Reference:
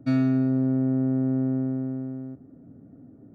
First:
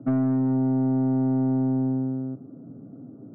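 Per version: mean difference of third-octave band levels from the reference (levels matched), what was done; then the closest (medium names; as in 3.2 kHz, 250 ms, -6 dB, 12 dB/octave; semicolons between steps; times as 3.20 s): 2.0 dB: elliptic band-pass 120–1300 Hz, stop band 40 dB; dynamic bell 180 Hz, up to +4 dB, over -34 dBFS, Q 1.3; compression 6:1, threshold -22 dBFS, peak gain reduction 5.5 dB; saturation -25 dBFS, distortion -14 dB; trim +6.5 dB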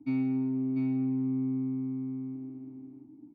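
4.0 dB: octave divider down 1 oct, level -1 dB; vowel filter u; treble shelf 2.1 kHz +9.5 dB; delay 694 ms -6 dB; trim +2 dB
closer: first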